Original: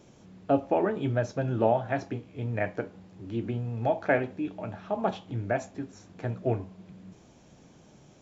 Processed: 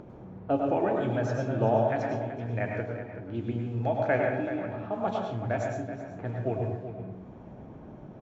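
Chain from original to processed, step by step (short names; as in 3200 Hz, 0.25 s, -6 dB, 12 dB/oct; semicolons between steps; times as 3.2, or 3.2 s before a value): low-pass opened by the level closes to 1000 Hz, open at -26 dBFS; upward compressor, threshold -34 dBFS; outdoor echo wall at 65 m, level -10 dB; plate-style reverb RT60 0.64 s, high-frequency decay 0.5×, pre-delay 90 ms, DRR 1 dB; gain -3 dB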